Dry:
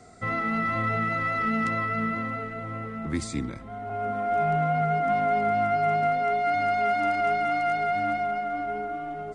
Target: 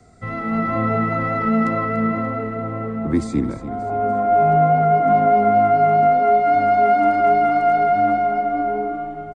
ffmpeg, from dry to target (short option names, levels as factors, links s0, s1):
-filter_complex "[0:a]acrossover=split=220|1200|1300[s0][s1][s2][s3];[s1]dynaudnorm=f=140:g=7:m=4.47[s4];[s0][s4][s2][s3]amix=inputs=4:normalize=0,lowshelf=f=180:g=10.5,aecho=1:1:290|580|870|1160:0.224|0.101|0.0453|0.0204,volume=0.708"